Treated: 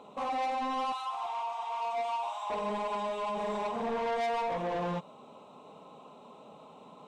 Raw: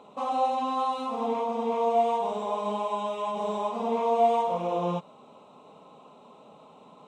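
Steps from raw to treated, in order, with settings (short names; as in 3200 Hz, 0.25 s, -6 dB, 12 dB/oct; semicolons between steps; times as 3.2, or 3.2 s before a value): 0.92–2.5 steep high-pass 740 Hz 48 dB/oct; soft clip -29 dBFS, distortion -8 dB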